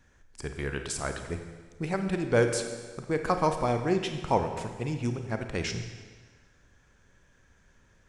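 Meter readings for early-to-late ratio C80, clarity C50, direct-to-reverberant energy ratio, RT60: 8.5 dB, 7.0 dB, 6.0 dB, 1.5 s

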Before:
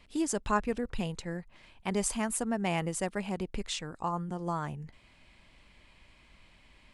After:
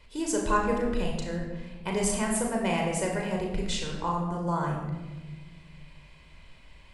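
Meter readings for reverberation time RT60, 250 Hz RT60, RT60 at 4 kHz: 1.3 s, 2.2 s, 0.80 s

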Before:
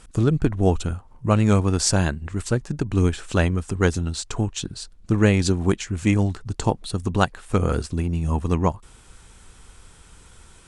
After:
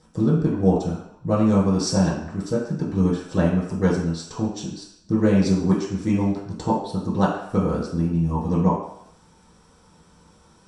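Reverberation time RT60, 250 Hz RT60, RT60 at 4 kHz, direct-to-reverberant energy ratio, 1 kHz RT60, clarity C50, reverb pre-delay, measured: 0.70 s, 0.55 s, 0.70 s, -8.5 dB, 0.75 s, 4.0 dB, 4 ms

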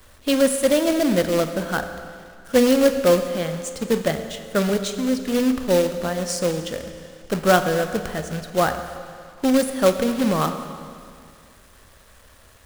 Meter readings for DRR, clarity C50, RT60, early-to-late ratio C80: 8.0 dB, 9.0 dB, 2.3 s, 9.5 dB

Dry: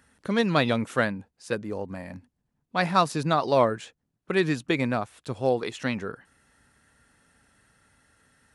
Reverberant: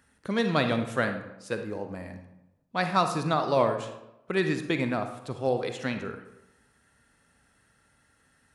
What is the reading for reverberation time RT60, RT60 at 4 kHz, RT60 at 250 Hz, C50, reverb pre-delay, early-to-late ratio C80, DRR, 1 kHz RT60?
0.90 s, 0.55 s, 0.90 s, 7.5 dB, 39 ms, 11.0 dB, 6.5 dB, 0.85 s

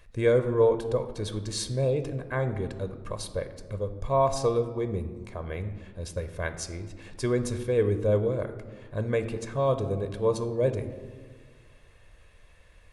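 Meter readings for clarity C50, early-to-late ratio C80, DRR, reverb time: 11.5 dB, 13.0 dB, 9.0 dB, 1.6 s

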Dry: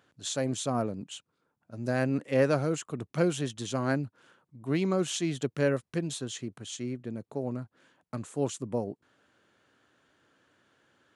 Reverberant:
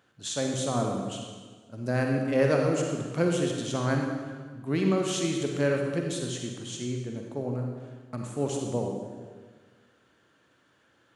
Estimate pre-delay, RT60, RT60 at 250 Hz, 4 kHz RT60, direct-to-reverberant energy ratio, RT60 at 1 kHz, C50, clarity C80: 39 ms, 1.5 s, 1.7 s, 1.3 s, 1.0 dB, 1.4 s, 1.5 dB, 4.0 dB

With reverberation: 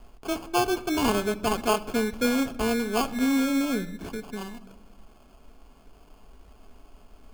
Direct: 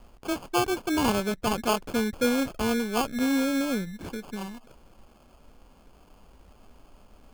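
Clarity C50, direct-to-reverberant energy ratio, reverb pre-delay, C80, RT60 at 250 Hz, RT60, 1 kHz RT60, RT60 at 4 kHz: 17.5 dB, 7.5 dB, 3 ms, 19.5 dB, 1.9 s, 1.1 s, 0.95 s, 0.65 s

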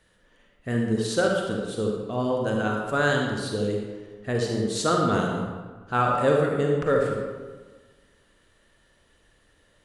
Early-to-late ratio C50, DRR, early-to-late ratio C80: 1.0 dB, -0.5 dB, 3.5 dB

